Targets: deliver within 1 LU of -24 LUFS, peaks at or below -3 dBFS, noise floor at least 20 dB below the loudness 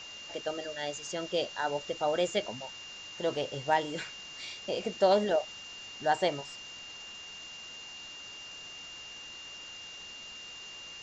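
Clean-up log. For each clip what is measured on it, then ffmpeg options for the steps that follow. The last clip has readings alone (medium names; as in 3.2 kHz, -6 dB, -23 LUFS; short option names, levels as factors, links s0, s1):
steady tone 2.8 kHz; tone level -44 dBFS; noise floor -46 dBFS; noise floor target -55 dBFS; loudness -34.5 LUFS; peak level -14.0 dBFS; loudness target -24.0 LUFS
-> -af "bandreject=f=2800:w=30"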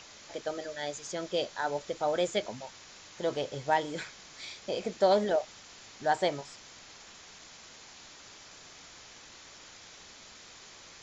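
steady tone not found; noise floor -52 dBFS; noise floor target -53 dBFS
-> -af "afftdn=nr=6:nf=-52"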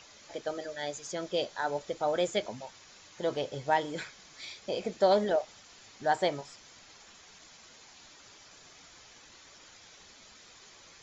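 noise floor -55 dBFS; loudness -32.0 LUFS; peak level -14.0 dBFS; loudness target -24.0 LUFS
-> -af "volume=2.51"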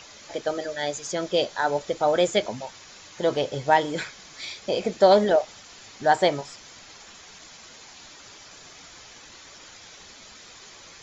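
loudness -24.0 LUFS; peak level -6.0 dBFS; noise floor -47 dBFS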